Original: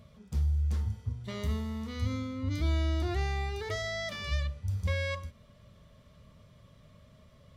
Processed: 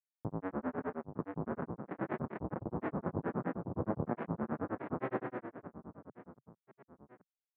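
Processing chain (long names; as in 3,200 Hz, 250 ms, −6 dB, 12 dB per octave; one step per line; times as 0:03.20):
in parallel at −2.5 dB: downward compressor 5 to 1, threshold −34 dBFS, peak gain reduction 9 dB
on the sum: comparator with hysteresis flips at −25.5 dBFS
elliptic band-pass filter 150–1,400 Hz, stop band 50 dB
high-frequency loss of the air 230 metres
on a send: reverse bouncing-ball delay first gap 180 ms, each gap 1.4×, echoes 5
on the sum: granular cloud, grains 9.6 per second, pitch spread up and down by 7 semitones
level +4 dB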